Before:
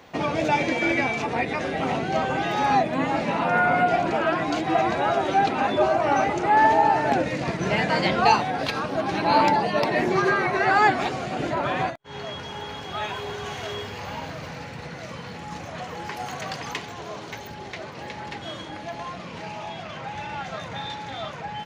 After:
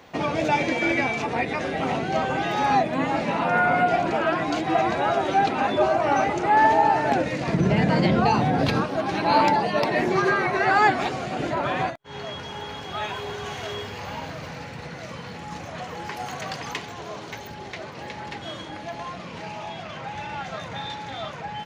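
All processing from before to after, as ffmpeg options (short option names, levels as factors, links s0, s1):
-filter_complex "[0:a]asettb=1/sr,asplit=3[s0][s1][s2];[s0]atrim=end=7.524[s3];[s1]atrim=start=7.52:end=8.84,asetpts=PTS-STARTPTS,afade=t=in:d=0.004:c=qsin,afade=t=out:st=1.316:d=0.004:c=qsin,equalizer=f=130:w=0.34:g=13.5,acompressor=threshold=0.158:ratio=4:attack=3.2:release=140:knee=1:detection=peak[s4];[s2]atrim=start=8.836[s5];[s3][s4]acrossfade=d=0.004:c1=hsin:c2=qsin[s6];[s6][s5]acrossfade=d=0.004:c1=qsin:c2=hsin"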